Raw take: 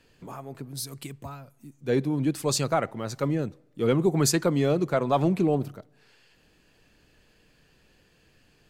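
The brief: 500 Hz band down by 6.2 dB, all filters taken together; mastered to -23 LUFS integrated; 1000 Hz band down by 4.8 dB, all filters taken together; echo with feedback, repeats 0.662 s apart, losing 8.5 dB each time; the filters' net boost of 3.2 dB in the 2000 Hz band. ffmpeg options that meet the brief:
-af "equalizer=f=500:t=o:g=-7,equalizer=f=1k:t=o:g=-6,equalizer=f=2k:t=o:g=6.5,aecho=1:1:662|1324|1986|2648:0.376|0.143|0.0543|0.0206,volume=5.5dB"

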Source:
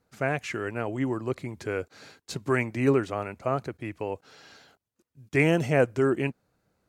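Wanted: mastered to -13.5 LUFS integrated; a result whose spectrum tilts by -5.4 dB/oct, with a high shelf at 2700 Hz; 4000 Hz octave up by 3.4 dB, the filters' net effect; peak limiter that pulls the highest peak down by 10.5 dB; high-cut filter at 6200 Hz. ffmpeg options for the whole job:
-af "lowpass=6.2k,highshelf=f=2.7k:g=-3,equalizer=f=4k:t=o:g=8,volume=18dB,alimiter=limit=0dB:level=0:latency=1"

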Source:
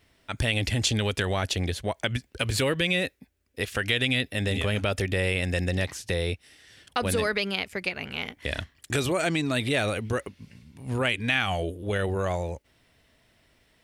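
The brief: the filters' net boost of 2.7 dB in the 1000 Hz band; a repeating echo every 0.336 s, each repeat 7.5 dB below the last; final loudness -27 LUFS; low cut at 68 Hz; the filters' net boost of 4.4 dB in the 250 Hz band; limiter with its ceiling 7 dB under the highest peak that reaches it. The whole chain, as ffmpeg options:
-af "highpass=68,equalizer=f=250:t=o:g=5.5,equalizer=f=1k:t=o:g=3.5,alimiter=limit=-14.5dB:level=0:latency=1,aecho=1:1:336|672|1008|1344|1680:0.422|0.177|0.0744|0.0312|0.0131"

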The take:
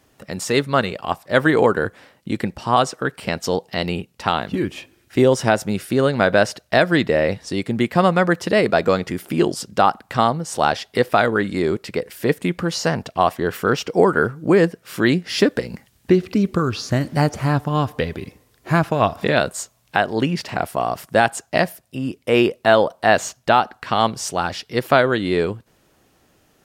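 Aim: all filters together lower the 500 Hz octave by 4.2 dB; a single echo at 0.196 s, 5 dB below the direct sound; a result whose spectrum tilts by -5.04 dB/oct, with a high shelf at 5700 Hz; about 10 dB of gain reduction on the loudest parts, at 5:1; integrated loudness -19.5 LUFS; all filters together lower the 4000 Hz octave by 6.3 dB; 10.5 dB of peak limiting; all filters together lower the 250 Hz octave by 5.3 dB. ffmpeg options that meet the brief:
-af "equalizer=f=250:t=o:g=-6.5,equalizer=f=500:t=o:g=-3.5,equalizer=f=4k:t=o:g=-7,highshelf=f=5.7k:g=-4,acompressor=threshold=-24dB:ratio=5,alimiter=limit=-18.5dB:level=0:latency=1,aecho=1:1:196:0.562,volume=11dB"

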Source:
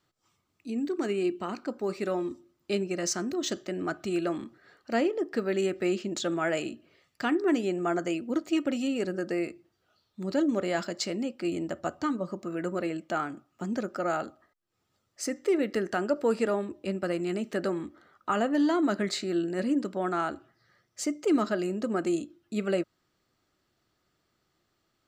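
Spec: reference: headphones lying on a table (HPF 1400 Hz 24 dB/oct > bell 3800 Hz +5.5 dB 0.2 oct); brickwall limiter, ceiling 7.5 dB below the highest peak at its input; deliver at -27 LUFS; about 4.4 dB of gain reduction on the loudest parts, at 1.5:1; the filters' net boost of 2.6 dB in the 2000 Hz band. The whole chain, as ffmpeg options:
-af "equalizer=f=2k:t=o:g=4.5,acompressor=threshold=-33dB:ratio=1.5,alimiter=level_in=1dB:limit=-24dB:level=0:latency=1,volume=-1dB,highpass=f=1.4k:w=0.5412,highpass=f=1.4k:w=1.3066,equalizer=f=3.8k:t=o:w=0.2:g=5.5,volume=16dB"

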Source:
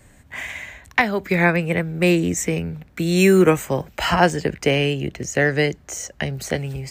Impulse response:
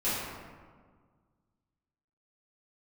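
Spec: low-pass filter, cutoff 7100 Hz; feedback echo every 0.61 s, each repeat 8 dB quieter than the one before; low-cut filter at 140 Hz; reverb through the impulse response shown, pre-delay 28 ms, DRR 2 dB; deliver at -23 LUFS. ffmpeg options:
-filter_complex "[0:a]highpass=140,lowpass=7.1k,aecho=1:1:610|1220|1830|2440|3050:0.398|0.159|0.0637|0.0255|0.0102,asplit=2[a][b];[1:a]atrim=start_sample=2205,adelay=28[c];[b][c]afir=irnorm=-1:irlink=0,volume=-12dB[d];[a][d]amix=inputs=2:normalize=0,volume=-5.5dB"

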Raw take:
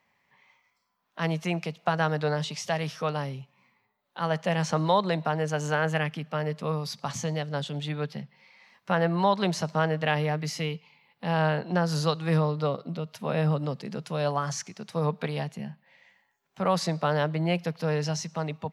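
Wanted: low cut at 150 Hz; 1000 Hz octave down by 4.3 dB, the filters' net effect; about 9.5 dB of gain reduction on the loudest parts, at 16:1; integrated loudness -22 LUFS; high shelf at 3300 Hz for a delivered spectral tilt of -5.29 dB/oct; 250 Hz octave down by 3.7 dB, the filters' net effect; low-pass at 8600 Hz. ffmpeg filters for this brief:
-af "highpass=150,lowpass=8.6k,equalizer=f=250:t=o:g=-3.5,equalizer=f=1k:t=o:g=-4.5,highshelf=f=3.3k:g=-9,acompressor=threshold=-32dB:ratio=16,volume=16dB"

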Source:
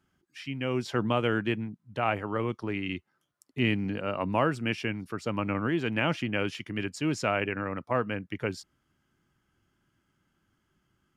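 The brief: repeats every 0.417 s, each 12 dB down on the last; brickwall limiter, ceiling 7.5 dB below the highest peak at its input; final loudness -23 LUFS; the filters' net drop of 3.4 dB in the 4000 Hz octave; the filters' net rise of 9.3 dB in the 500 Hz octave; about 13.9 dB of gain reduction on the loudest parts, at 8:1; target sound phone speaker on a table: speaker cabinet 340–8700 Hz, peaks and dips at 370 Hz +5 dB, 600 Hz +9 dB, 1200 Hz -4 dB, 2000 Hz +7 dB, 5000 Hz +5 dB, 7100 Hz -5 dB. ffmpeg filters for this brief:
-af "equalizer=f=500:t=o:g=5,equalizer=f=4k:t=o:g=-7.5,acompressor=threshold=-34dB:ratio=8,alimiter=level_in=5dB:limit=-24dB:level=0:latency=1,volume=-5dB,highpass=f=340:w=0.5412,highpass=f=340:w=1.3066,equalizer=f=370:t=q:w=4:g=5,equalizer=f=600:t=q:w=4:g=9,equalizer=f=1.2k:t=q:w=4:g=-4,equalizer=f=2k:t=q:w=4:g=7,equalizer=f=5k:t=q:w=4:g=5,equalizer=f=7.1k:t=q:w=4:g=-5,lowpass=f=8.7k:w=0.5412,lowpass=f=8.7k:w=1.3066,aecho=1:1:417|834|1251:0.251|0.0628|0.0157,volume=16dB"

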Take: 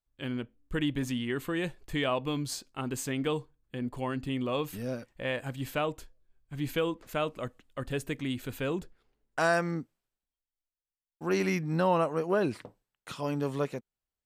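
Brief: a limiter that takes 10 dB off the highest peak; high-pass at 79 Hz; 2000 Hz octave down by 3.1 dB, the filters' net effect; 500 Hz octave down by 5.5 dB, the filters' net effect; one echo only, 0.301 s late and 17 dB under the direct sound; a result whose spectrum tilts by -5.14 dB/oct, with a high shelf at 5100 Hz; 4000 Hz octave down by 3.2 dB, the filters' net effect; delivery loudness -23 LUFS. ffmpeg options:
-af "highpass=79,equalizer=f=500:t=o:g=-7,equalizer=f=2k:t=o:g=-3.5,equalizer=f=4k:t=o:g=-6,highshelf=f=5.1k:g=7.5,alimiter=level_in=3dB:limit=-24dB:level=0:latency=1,volume=-3dB,aecho=1:1:301:0.141,volume=15dB"

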